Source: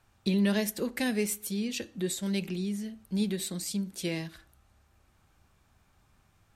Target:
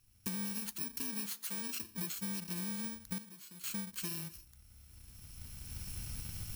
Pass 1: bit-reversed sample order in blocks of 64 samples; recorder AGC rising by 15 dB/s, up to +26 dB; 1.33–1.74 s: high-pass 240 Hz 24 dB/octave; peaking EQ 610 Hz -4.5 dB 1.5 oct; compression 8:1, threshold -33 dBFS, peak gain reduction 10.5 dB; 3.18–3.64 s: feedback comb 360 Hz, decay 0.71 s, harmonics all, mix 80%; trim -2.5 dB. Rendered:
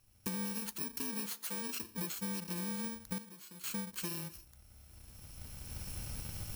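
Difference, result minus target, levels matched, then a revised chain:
500 Hz band +6.5 dB
bit-reversed sample order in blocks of 64 samples; recorder AGC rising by 15 dB/s, up to +26 dB; 1.33–1.74 s: high-pass 240 Hz 24 dB/octave; peaking EQ 610 Hz -14.5 dB 1.5 oct; compression 8:1, threshold -33 dBFS, peak gain reduction 9.5 dB; 3.18–3.64 s: feedback comb 360 Hz, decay 0.71 s, harmonics all, mix 80%; trim -2.5 dB

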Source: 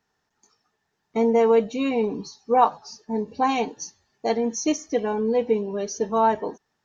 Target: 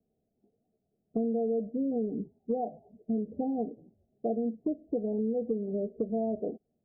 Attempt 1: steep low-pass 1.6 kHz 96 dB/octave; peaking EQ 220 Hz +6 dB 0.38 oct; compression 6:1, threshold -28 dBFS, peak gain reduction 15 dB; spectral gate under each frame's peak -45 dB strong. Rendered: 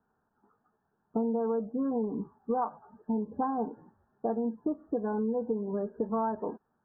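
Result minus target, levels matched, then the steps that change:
1 kHz band +7.5 dB
change: steep low-pass 710 Hz 96 dB/octave

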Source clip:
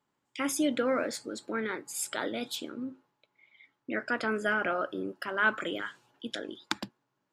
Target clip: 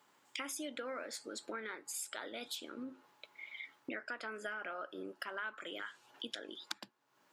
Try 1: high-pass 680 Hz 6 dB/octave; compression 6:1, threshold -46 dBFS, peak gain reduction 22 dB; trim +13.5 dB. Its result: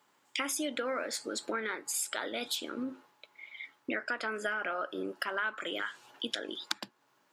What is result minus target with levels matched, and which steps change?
compression: peak gain reduction -8.5 dB
change: compression 6:1, threshold -56 dBFS, peak gain reduction 30 dB

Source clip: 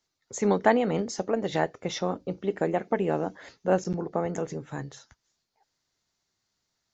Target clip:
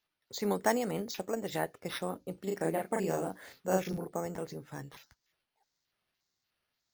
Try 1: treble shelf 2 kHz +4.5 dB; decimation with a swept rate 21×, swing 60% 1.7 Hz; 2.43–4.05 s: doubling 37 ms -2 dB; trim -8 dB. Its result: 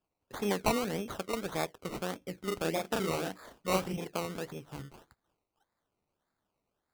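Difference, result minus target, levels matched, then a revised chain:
decimation with a swept rate: distortion +12 dB
treble shelf 2 kHz +4.5 dB; decimation with a swept rate 5×, swing 60% 1.7 Hz; 2.43–4.05 s: doubling 37 ms -2 dB; trim -8 dB

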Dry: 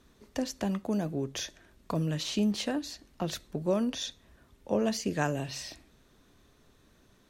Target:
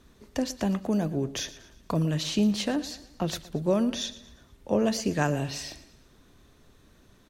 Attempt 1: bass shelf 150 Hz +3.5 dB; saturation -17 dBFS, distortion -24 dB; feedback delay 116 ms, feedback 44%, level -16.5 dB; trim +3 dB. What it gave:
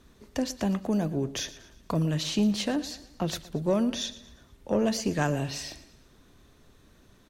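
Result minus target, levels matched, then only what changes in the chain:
saturation: distortion +20 dB
change: saturation -6 dBFS, distortion -44 dB

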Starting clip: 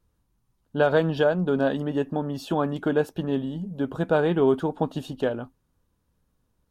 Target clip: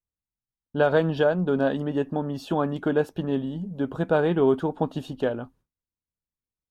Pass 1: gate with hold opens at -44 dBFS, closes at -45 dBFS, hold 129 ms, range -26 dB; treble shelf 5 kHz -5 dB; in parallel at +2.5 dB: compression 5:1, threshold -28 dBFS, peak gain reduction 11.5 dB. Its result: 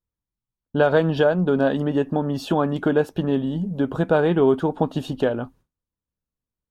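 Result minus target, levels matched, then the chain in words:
compression: peak gain reduction +11.5 dB
gate with hold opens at -44 dBFS, closes at -45 dBFS, hold 129 ms, range -26 dB; treble shelf 5 kHz -5 dB

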